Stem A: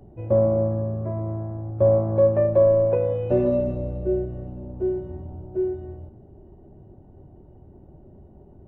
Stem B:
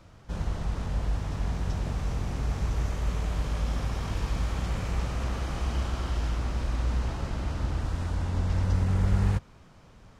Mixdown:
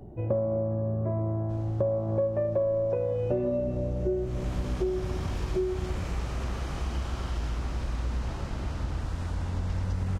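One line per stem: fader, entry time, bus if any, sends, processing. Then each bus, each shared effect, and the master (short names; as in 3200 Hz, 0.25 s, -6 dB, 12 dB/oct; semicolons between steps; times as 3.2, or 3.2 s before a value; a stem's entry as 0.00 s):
+2.5 dB, 0.00 s, no send, dry
4.08 s -13.5 dB -> 4.52 s -1.5 dB, 1.20 s, no send, dry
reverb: off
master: compressor 6:1, threshold -25 dBFS, peak gain reduction 13.5 dB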